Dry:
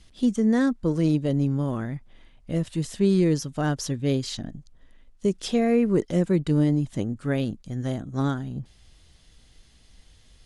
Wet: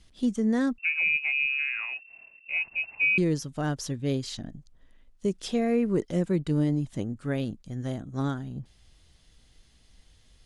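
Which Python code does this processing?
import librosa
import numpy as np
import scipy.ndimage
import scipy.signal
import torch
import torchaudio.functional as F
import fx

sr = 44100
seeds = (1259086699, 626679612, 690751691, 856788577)

y = fx.freq_invert(x, sr, carrier_hz=2700, at=(0.78, 3.18))
y = y * 10.0 ** (-4.0 / 20.0)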